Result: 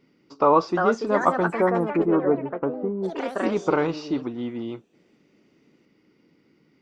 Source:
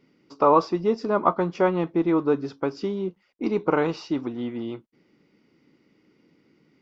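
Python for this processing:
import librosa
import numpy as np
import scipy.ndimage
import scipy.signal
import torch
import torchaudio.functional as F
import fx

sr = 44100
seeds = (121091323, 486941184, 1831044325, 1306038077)

y = fx.lowpass(x, sr, hz=1300.0, slope=24, at=(1.48, 3.42))
y = fx.echo_pitch(y, sr, ms=439, semitones=4, count=3, db_per_echo=-6.0)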